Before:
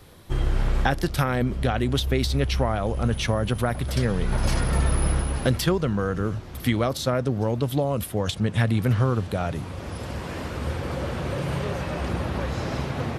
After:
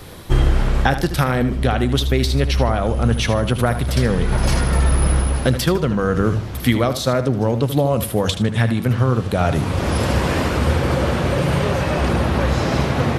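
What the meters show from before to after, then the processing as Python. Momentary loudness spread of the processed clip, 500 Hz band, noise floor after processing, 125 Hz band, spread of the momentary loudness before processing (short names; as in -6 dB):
2 LU, +7.0 dB, -27 dBFS, +6.5 dB, 7 LU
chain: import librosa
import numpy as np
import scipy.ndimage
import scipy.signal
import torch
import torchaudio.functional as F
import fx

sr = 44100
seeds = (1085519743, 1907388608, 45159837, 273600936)

p1 = fx.hum_notches(x, sr, base_hz=50, count=2)
p2 = fx.rider(p1, sr, range_db=10, speed_s=0.5)
p3 = p2 + fx.echo_feedback(p2, sr, ms=77, feedback_pct=31, wet_db=-11.5, dry=0)
y = F.gain(torch.from_numpy(p3), 6.5).numpy()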